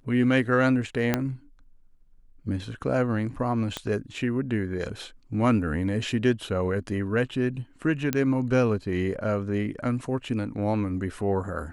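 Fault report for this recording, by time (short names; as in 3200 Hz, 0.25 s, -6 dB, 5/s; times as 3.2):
1.14 pop -8 dBFS
3.77 pop -15 dBFS
8.13 pop -10 dBFS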